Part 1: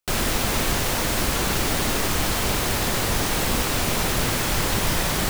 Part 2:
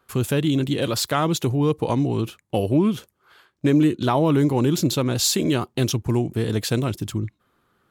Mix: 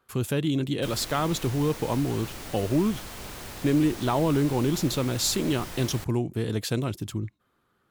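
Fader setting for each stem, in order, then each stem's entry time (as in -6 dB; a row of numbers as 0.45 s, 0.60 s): -16.5 dB, -5.0 dB; 0.75 s, 0.00 s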